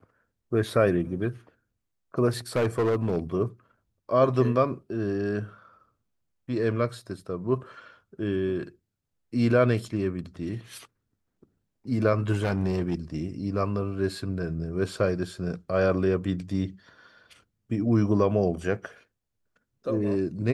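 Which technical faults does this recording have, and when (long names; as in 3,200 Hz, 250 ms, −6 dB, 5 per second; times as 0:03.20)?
0:02.56–0:03.17: clipping −20 dBFS
0:12.32–0:12.95: clipping −21 dBFS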